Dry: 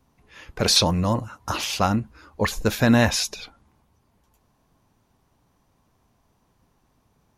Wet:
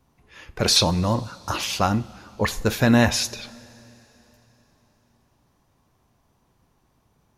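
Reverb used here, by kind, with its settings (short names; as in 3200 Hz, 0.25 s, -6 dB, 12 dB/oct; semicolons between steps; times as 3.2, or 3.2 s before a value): two-slope reverb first 0.33 s, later 3.7 s, from -18 dB, DRR 12.5 dB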